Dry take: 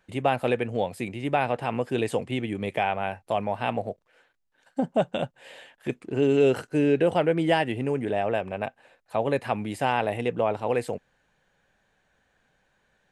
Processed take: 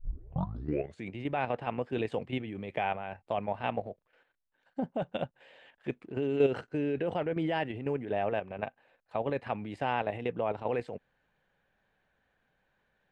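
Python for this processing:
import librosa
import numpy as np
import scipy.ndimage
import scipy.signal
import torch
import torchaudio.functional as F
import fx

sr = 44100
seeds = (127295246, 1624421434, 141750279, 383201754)

y = fx.tape_start_head(x, sr, length_s=1.09)
y = scipy.signal.sosfilt(scipy.signal.butter(2, 3600.0, 'lowpass', fs=sr, output='sos'), y)
y = fx.level_steps(y, sr, step_db=9)
y = y * librosa.db_to_amplitude(-3.0)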